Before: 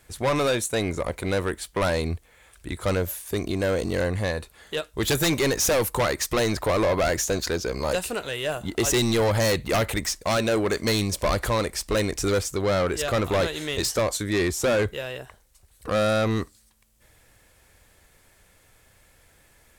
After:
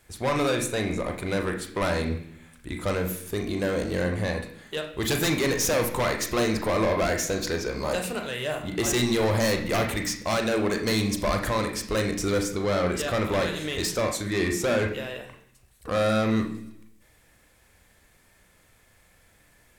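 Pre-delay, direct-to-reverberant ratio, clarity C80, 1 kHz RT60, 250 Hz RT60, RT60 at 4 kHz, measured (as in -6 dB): 34 ms, 2.5 dB, 11.0 dB, 0.70 s, 0.85 s, 0.95 s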